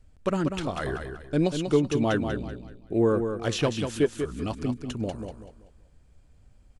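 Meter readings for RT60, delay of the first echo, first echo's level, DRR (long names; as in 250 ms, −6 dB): no reverb audible, 191 ms, −7.0 dB, no reverb audible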